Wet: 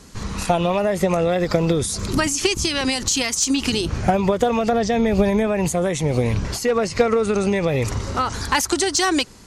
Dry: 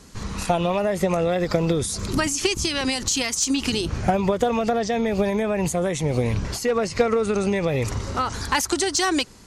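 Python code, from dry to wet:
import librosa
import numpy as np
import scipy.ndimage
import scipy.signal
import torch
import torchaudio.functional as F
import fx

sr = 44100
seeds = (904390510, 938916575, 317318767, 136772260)

y = fx.low_shelf(x, sr, hz=150.0, db=8.5, at=(4.72, 5.47))
y = y * librosa.db_to_amplitude(2.5)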